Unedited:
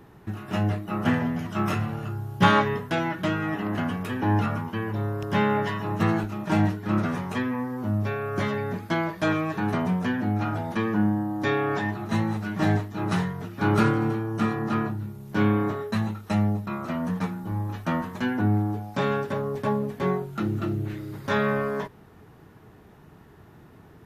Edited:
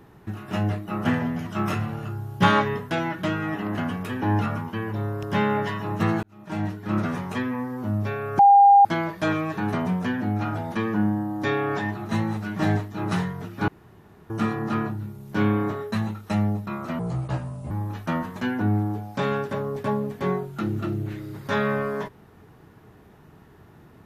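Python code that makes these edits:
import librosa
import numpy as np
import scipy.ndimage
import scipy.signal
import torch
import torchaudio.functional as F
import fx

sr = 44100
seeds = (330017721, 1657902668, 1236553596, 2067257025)

y = fx.edit(x, sr, fx.fade_in_span(start_s=6.23, length_s=0.77),
    fx.bleep(start_s=8.39, length_s=0.46, hz=803.0, db=-9.5),
    fx.room_tone_fill(start_s=13.68, length_s=0.62),
    fx.speed_span(start_s=16.99, length_s=0.51, speed=0.71), tone=tone)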